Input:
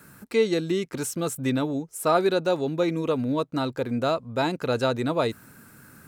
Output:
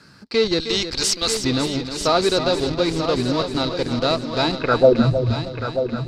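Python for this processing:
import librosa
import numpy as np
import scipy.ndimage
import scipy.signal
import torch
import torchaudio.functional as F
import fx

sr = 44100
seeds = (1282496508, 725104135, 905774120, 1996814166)

p1 = fx.tilt_eq(x, sr, slope=4.5, at=(0.6, 1.44))
p2 = fx.schmitt(p1, sr, flips_db=-24.5)
p3 = p1 + (p2 * 10.0 ** (-7.0 / 20.0))
p4 = fx.filter_sweep_lowpass(p3, sr, from_hz=4700.0, to_hz=110.0, start_s=4.53, end_s=5.12, q=7.0)
p5 = p4 + fx.echo_heads(p4, sr, ms=312, heads='first and third', feedback_pct=53, wet_db=-10, dry=0)
y = p5 * 10.0 ** (1.0 / 20.0)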